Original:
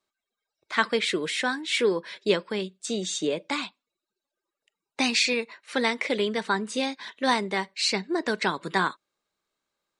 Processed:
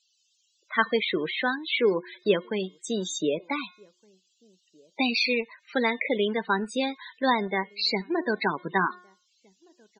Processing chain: de-hum 359.6 Hz, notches 11; band noise 2500–7900 Hz -63 dBFS; in parallel at -10.5 dB: bit-crush 5-bit; on the sum: loudest bins only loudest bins 32; outdoor echo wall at 260 m, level -30 dB; gain -1.5 dB

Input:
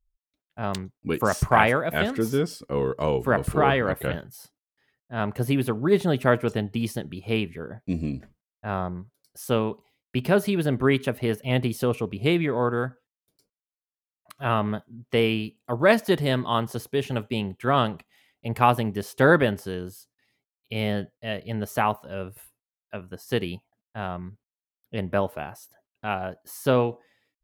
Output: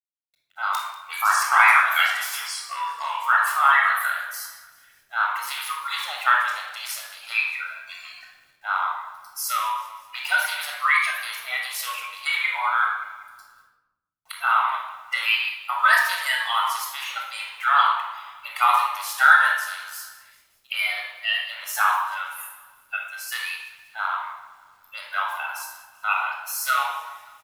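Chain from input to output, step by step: bin magnitudes rounded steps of 30 dB; in parallel at +1 dB: compressor 5:1, threshold -30 dBFS, peak gain reduction 15.5 dB; 15.31–15.85 on the sum: dynamic EQ 1500 Hz, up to +4 dB, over -41 dBFS, Q 1.6; elliptic high-pass 950 Hz, stop band 60 dB; high shelf 2400 Hz +3.5 dB; on a send: feedback echo 0.192 s, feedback 52%, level -18 dB; on the sum: bit-crush 11-bit; shoebox room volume 3700 m³, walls furnished, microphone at 6.8 m

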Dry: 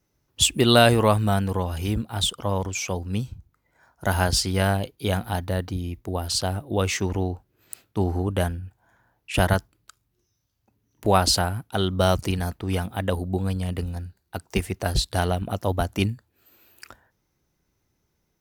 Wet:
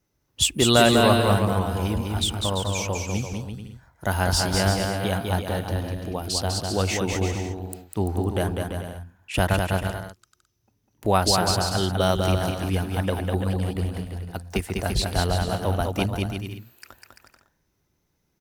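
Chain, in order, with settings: bouncing-ball echo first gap 0.2 s, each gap 0.7×, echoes 5; gain -1.5 dB

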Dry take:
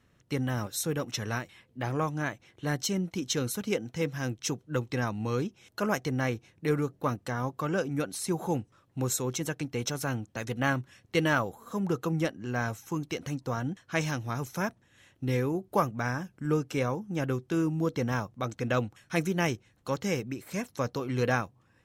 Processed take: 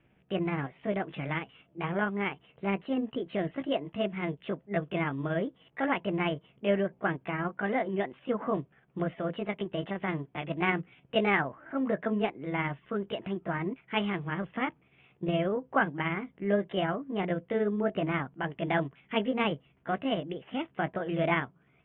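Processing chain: delay-line pitch shifter +5 st; steep low-pass 3300 Hz 96 dB/oct; gain +1 dB

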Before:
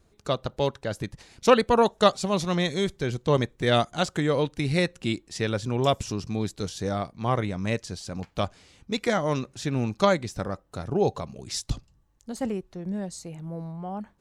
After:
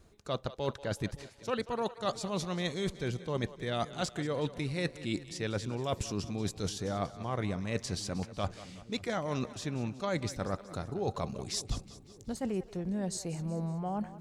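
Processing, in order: reverse; compressor 10:1, threshold -32 dBFS, peak gain reduction 20 dB; reverse; split-band echo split 400 Hz, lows 0.565 s, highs 0.186 s, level -15 dB; gain +2 dB

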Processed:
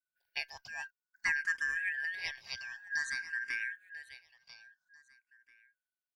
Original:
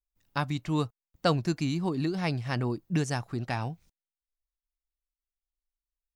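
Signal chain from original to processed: four-band scrambler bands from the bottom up 3142; feedback echo 0.992 s, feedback 18%, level -12.5 dB; endless phaser +0.52 Hz; gain -5 dB

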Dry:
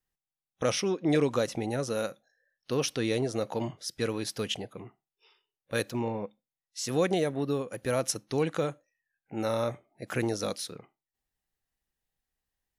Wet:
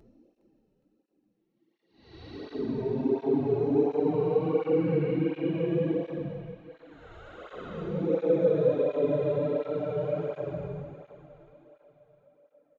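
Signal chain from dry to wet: bin magnitudes rounded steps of 15 dB; HPF 220 Hz 12 dB/oct; bell 1300 Hz -12 dB 0.99 oct; in parallel at -11 dB: Schmitt trigger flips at -41.5 dBFS; on the sum: tape spacing loss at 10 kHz 44 dB; doubler 12 ms -10 dB; Paulstretch 21×, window 0.05 s, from 8.2; split-band echo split 550 Hz, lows 0.141 s, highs 0.413 s, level -12 dB; tape flanging out of phase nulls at 1.4 Hz, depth 4.1 ms; gain +6.5 dB

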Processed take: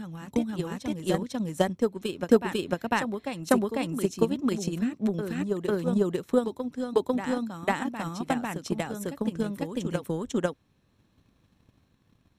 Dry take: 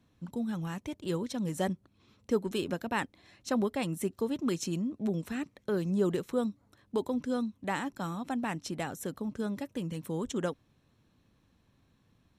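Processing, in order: reverse echo 0.498 s -4 dB; transient shaper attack +11 dB, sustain -1 dB

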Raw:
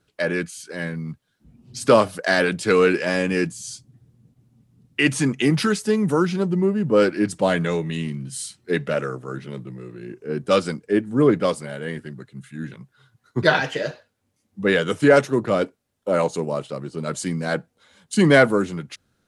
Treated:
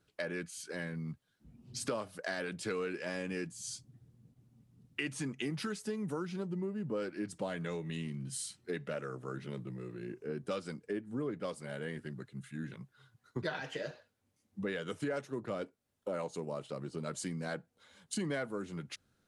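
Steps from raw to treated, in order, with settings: compressor 4:1, threshold -30 dBFS, peak gain reduction 17.5 dB; gain -6.5 dB

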